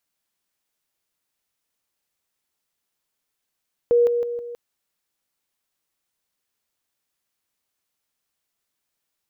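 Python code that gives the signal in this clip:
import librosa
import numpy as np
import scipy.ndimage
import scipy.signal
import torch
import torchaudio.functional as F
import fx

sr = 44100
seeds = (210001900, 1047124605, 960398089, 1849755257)

y = fx.level_ladder(sr, hz=477.0, from_db=-13.0, step_db=-6.0, steps=4, dwell_s=0.16, gap_s=0.0)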